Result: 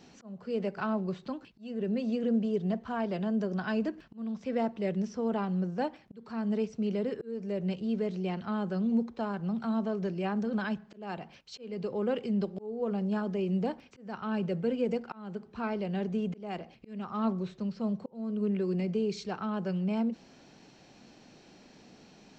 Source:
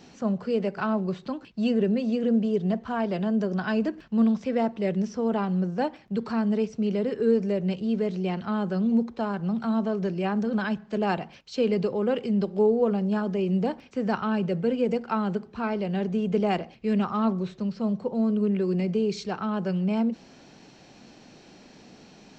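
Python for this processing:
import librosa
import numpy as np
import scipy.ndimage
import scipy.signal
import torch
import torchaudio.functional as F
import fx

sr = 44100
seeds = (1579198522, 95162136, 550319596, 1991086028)

y = fx.auto_swell(x, sr, attack_ms=407.0)
y = y * librosa.db_to_amplitude(-5.0)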